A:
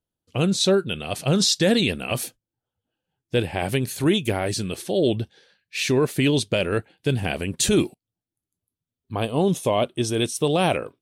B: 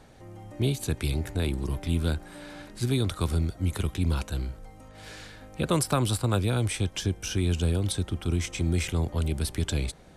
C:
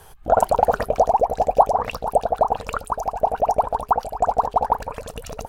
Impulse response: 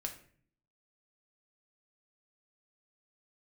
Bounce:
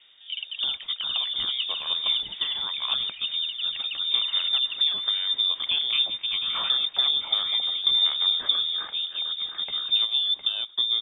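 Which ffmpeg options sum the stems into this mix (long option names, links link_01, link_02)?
-filter_complex "[0:a]acompressor=threshold=-27dB:ratio=10,asubboost=boost=7:cutoff=200,adelay=800,volume=-2.5dB[link_01];[1:a]volume=-3.5dB,asplit=2[link_02][link_03];[link_03]volume=-8.5dB[link_04];[2:a]volume=-17.5dB[link_05];[link_04]aecho=0:1:708|1416|2124|2832:1|0.22|0.0484|0.0106[link_06];[link_01][link_02][link_05][link_06]amix=inputs=4:normalize=0,lowpass=frequency=3100:width_type=q:width=0.5098,lowpass=frequency=3100:width_type=q:width=0.6013,lowpass=frequency=3100:width_type=q:width=0.9,lowpass=frequency=3100:width_type=q:width=2.563,afreqshift=-3700"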